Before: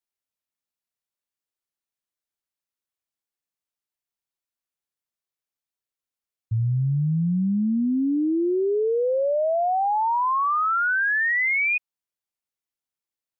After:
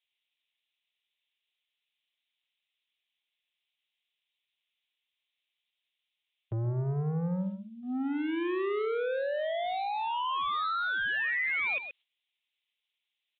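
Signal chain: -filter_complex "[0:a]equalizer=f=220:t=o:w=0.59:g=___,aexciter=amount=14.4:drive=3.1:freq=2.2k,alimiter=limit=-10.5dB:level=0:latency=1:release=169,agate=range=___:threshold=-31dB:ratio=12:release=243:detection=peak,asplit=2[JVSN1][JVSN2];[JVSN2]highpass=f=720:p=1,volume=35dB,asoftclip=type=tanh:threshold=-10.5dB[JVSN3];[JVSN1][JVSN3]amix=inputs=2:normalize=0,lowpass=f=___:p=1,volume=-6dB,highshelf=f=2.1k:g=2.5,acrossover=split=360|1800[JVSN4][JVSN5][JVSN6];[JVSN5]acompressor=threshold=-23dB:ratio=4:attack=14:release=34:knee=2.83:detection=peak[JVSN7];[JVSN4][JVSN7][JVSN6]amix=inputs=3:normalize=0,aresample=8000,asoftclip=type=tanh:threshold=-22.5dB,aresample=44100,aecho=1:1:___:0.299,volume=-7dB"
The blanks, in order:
-15, -22dB, 1.9k, 128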